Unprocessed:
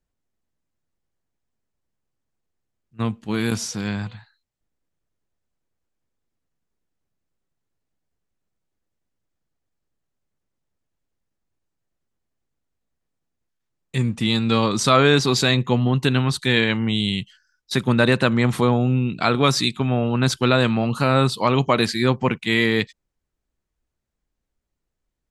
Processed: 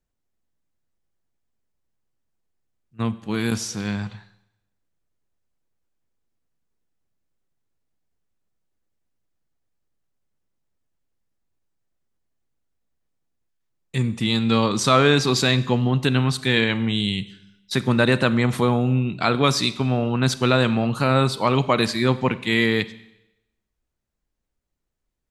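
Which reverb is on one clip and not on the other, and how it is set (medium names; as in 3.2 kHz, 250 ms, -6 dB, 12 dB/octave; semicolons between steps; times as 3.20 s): Schroeder reverb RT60 0.89 s, combs from 31 ms, DRR 15.5 dB; trim -1 dB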